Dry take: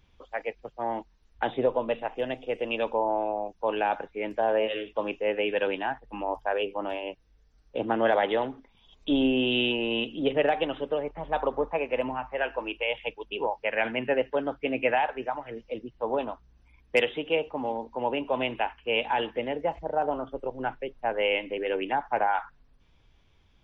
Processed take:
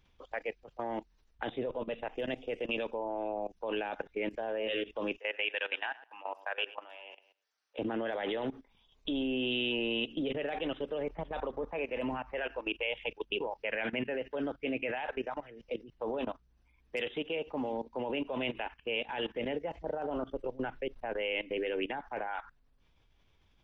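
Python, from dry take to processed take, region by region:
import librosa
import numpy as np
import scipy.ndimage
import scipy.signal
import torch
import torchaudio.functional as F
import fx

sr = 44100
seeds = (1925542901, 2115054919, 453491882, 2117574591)

y = fx.chain(x, sr, fx.highpass(hz=970.0, slope=12),
    fx.echo_feedback(ms=105, feedback_pct=26, wet_db=-14.0), at=(5.18, 7.79))
y = fx.peak_eq(y, sr, hz=100.0, db=-2.5, octaves=2.7)
y = fx.level_steps(y, sr, step_db=18)
y = fx.dynamic_eq(y, sr, hz=890.0, q=1.2, threshold_db=-49.0, ratio=4.0, max_db=-7)
y = y * 10.0 ** (4.5 / 20.0)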